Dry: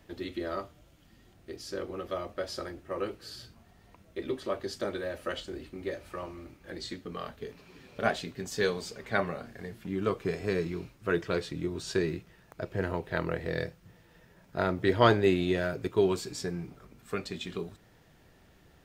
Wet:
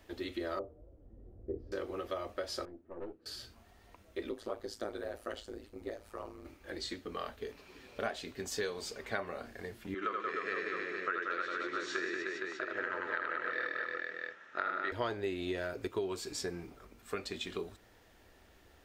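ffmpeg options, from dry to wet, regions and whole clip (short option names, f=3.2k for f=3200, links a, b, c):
-filter_complex "[0:a]asettb=1/sr,asplit=3[a][b][c];[a]atrim=end=0.594[d];[b]atrim=start=0.59:end=1.72,asetpts=PTS-STARTPTS,afade=t=in:d=0.004:c=qsin,afade=t=out:st=1.126:d=0.004:c=qsin,lowpass=f=480:t=q:w=3.4,asubboost=boost=11:cutoff=210[e];[c]atrim=start=1.716[f];[d][e]acrossfade=d=0.004:c1=hsin:c2=qsin[g];[g][f]acrossfade=d=0.004:c1=qsin:c2=hsin,asettb=1/sr,asplit=3[h][i][j];[h]atrim=end=2.654[k];[i]atrim=start=2.65:end=3.26,asetpts=PTS-STARTPTS,afade=t=in:d=0.004:c=qsin,afade=t=out:st=0.606:d=0.004:c=qsin,bandpass=f=230:t=q:w=1.3,aeval=exprs='(tanh(63.1*val(0)+0.7)-tanh(0.7))/63.1':c=same,asplit=2[l][m];[m]adelay=12,volume=-6.5dB[n];[l][n]amix=inputs=2:normalize=0,atrim=end_sample=26901[o];[j]atrim=start=3.256[p];[k][o]acrossfade=d=0.004:c1=hsin:c2=qsin[q];[q][p]acrossfade=d=0.004:c1=qsin:c2=hsin,asettb=1/sr,asplit=3[r][s][t];[r]atrim=end=4.294[u];[s]atrim=start=4.29:end=6.45,asetpts=PTS-STARTPTS,afade=t=in:d=0.004:c=qsin,afade=t=out:st=2.156:d=0.004:c=qsin,equalizer=f=2.5k:w=0.97:g=-6.5,tremolo=f=110:d=0.889[v];[t]atrim=start=6.446[w];[u][v]acrossfade=d=0.004:c1=hsin:c2=qsin[x];[x][w]acrossfade=d=0.004:c1=qsin:c2=hsin,asettb=1/sr,asplit=3[y][z][aa];[y]atrim=end=9.944[ab];[z]atrim=start=9.94:end=14.92,asetpts=PTS-STARTPTS,afade=t=in:d=0.004:c=qsin,afade=t=out:st=4.976:d=0.004:c=qsin,highpass=390,equalizer=f=440:t=q:w=4:g=-5,equalizer=f=690:t=q:w=4:g=-9,equalizer=f=1.3k:t=q:w=4:g=10,equalizer=f=1.8k:t=q:w=4:g=7,equalizer=f=4.8k:t=q:w=4:g=-9,lowpass=f=5.9k:w=0.5412,lowpass=f=5.9k:w=1.3066,bandreject=f=940:w=9.4,aecho=1:1:80|180|305|461.2|656.6:0.794|0.631|0.501|0.398|0.316,atrim=end_sample=219618[ac];[aa]atrim=start=14.916[ad];[ab][ac]acrossfade=d=0.004:c1=hsin:c2=qsin[ae];[ae][ad]acrossfade=d=0.004:c1=qsin:c2=hsin,equalizer=f=150:t=o:w=0.75:g=-15,acompressor=threshold=-33dB:ratio=5"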